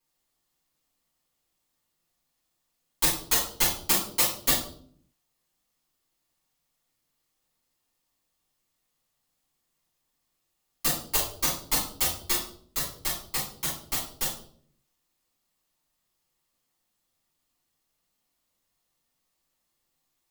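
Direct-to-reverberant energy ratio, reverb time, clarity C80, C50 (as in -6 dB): -7.5 dB, 0.60 s, 10.0 dB, 4.5 dB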